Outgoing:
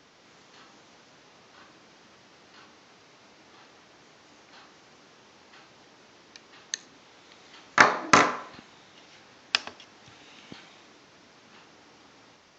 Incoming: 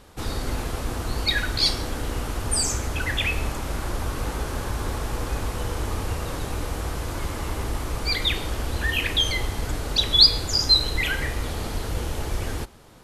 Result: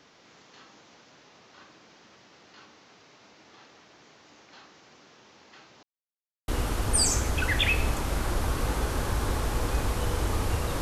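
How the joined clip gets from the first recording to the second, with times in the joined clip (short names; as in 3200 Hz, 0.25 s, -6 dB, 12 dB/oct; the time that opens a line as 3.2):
outgoing
5.83–6.48 mute
6.48 switch to incoming from 2.06 s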